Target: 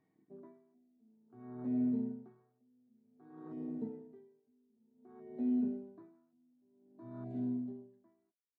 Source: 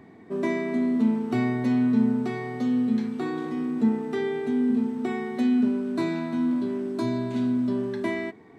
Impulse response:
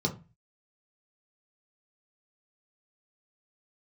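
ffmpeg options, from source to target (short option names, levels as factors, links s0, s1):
-filter_complex "[0:a]acrossover=split=2700[s0][s1];[s1]acompressor=threshold=0.00141:ratio=4:attack=1:release=60[s2];[s0][s2]amix=inputs=2:normalize=0,afwtdn=0.0251,flanger=delay=6.4:depth=4.8:regen=-31:speed=0.28:shape=sinusoidal,aeval=exprs='val(0)*pow(10,-39*(0.5-0.5*cos(2*PI*0.54*n/s))/20)':c=same,volume=0.447"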